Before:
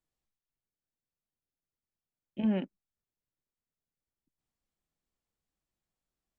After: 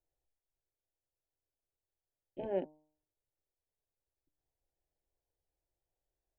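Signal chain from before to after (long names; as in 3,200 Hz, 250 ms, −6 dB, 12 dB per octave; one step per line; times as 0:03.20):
high shelf with overshoot 1,900 Hz −11.5 dB, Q 1.5
phaser with its sweep stopped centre 510 Hz, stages 4
hum removal 153 Hz, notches 8
level +3.5 dB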